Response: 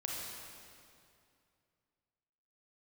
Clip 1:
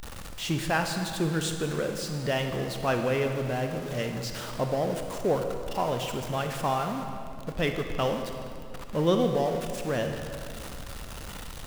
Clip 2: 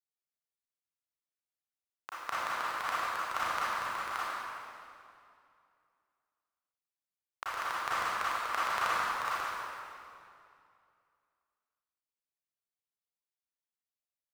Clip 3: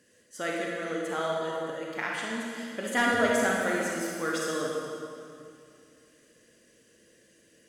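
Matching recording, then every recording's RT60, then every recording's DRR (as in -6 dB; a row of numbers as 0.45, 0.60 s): 3; 2.4, 2.5, 2.5 s; 5.0, -10.5, -3.0 dB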